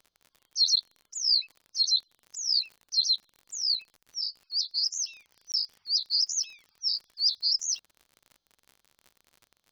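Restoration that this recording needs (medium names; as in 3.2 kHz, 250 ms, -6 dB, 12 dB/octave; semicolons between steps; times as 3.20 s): de-click; interpolate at 5.52 s, 18 ms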